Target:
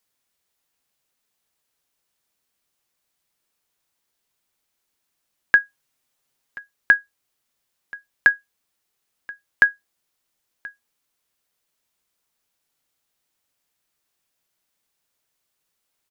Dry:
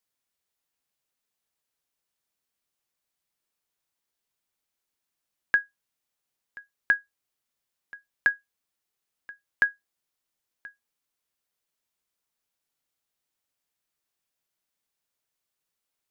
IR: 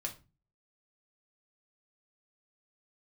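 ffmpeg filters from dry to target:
-filter_complex "[0:a]asplit=3[s0][s1][s2];[s0]afade=t=out:st=5.58:d=0.02[s3];[s1]aecho=1:1:7.5:0.62,afade=t=in:st=5.58:d=0.02,afade=t=out:st=6.59:d=0.02[s4];[s2]afade=t=in:st=6.59:d=0.02[s5];[s3][s4][s5]amix=inputs=3:normalize=0,volume=2.37"

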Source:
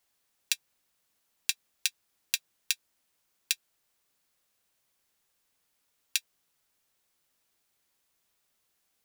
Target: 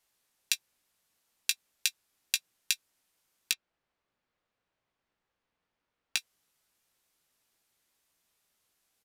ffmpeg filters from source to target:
-filter_complex "[0:a]aresample=32000,aresample=44100,asettb=1/sr,asplit=3[s0][s1][s2];[s0]atrim=end=3.514[s3];[s1]atrim=start=3.51:end=6.17,asetpts=PTS-STARTPTS,afade=t=in:d=0.004:c=qsin,afade=t=out:st=2.656:d=0.004:c=qsin,adynamicsmooth=sensitivity=3:basefreq=2600[s4];[s2]atrim=start=6.166[s5];[s3][s4]acrossfade=d=0.004:c1=hsin:c2=qsin[s6];[s6][s5]acrossfade=d=0.004:c1=qsin:c2=hsin,asplit=2[s7][s8];[s8]adelay=17,volume=0.316[s9];[s7][s9]amix=inputs=2:normalize=0"

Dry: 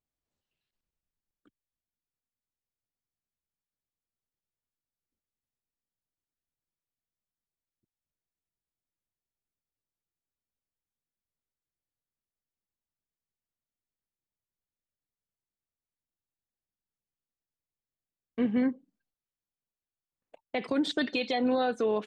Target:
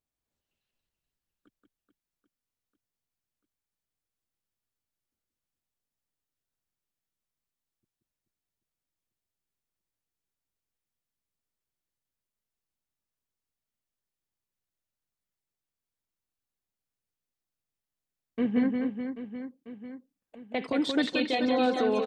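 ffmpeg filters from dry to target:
-af "aecho=1:1:180|432|784.8|1279|1970:0.631|0.398|0.251|0.158|0.1"

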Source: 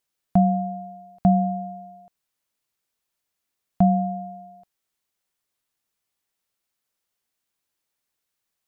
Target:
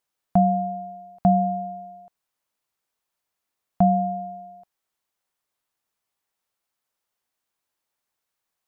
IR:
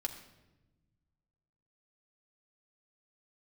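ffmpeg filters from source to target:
-af "equalizer=f=900:t=o:w=1.7:g=6,volume=0.75"

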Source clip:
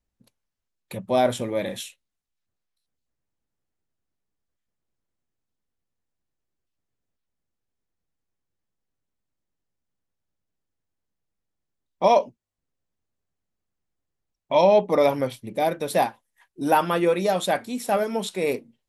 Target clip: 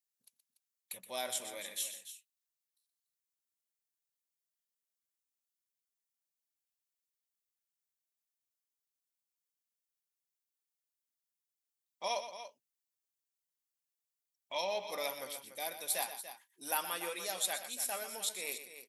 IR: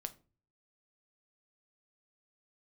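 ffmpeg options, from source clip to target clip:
-af "aderivative,aecho=1:1:122.4|288.6:0.282|0.251"

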